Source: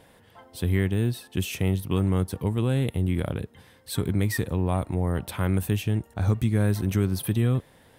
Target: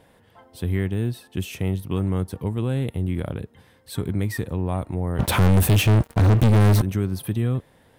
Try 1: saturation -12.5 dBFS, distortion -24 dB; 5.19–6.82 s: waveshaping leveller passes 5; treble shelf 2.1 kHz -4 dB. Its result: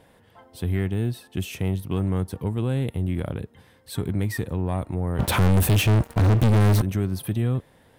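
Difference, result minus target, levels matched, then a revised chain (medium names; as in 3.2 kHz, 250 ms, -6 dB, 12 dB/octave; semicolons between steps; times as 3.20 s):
saturation: distortion +18 dB
saturation -3 dBFS, distortion -41 dB; 5.19–6.82 s: waveshaping leveller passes 5; treble shelf 2.1 kHz -4 dB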